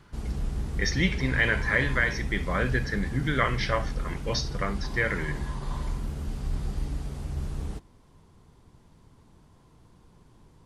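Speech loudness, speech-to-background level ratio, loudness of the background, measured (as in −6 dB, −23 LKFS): −28.0 LKFS, 6.5 dB, −34.5 LKFS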